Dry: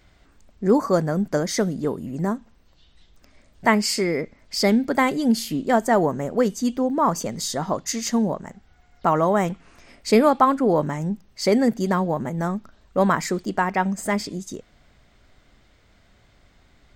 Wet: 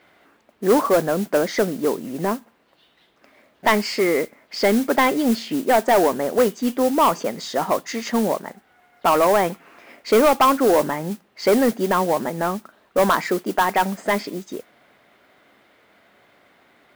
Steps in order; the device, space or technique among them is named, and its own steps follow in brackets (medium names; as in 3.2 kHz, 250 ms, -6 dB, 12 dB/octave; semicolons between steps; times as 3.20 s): carbon microphone (band-pass 320–2800 Hz; saturation -16.5 dBFS, distortion -11 dB; modulation noise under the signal 17 dB); trim +7 dB